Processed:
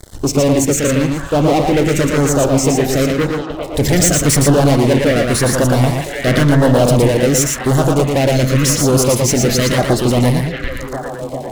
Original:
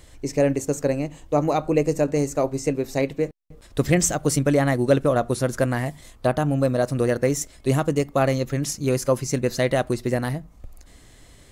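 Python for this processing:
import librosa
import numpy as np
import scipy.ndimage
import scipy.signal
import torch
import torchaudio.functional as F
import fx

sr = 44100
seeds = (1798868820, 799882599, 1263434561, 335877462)

y = fx.leveller(x, sr, passes=5)
y = fx.echo_stepped(y, sr, ms=400, hz=2500.0, octaves=-0.7, feedback_pct=70, wet_db=-2)
y = fx.filter_lfo_notch(y, sr, shape='saw_down', hz=0.92, low_hz=640.0, high_hz=2800.0, q=1.1)
y = y + 10.0 ** (-4.0 / 20.0) * np.pad(y, (int(115 * sr / 1000.0), 0))[:len(y)]
y = fx.env_flatten(y, sr, amount_pct=50, at=(6.27, 7.08))
y = F.gain(torch.from_numpy(y), -2.0).numpy()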